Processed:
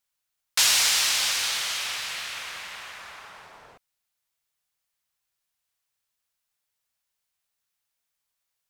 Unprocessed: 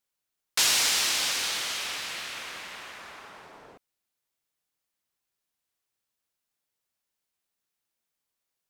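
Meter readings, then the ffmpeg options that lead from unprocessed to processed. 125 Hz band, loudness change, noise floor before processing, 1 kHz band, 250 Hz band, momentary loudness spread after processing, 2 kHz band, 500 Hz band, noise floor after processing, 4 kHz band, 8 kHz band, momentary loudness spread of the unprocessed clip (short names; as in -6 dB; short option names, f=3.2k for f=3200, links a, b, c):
-0.5 dB, +3.0 dB, -85 dBFS, +1.5 dB, -6.0 dB, 20 LU, +2.5 dB, -2.0 dB, -82 dBFS, +3.0 dB, +3.0 dB, 20 LU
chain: -af "equalizer=f=300:w=0.83:g=-10.5,volume=3dB"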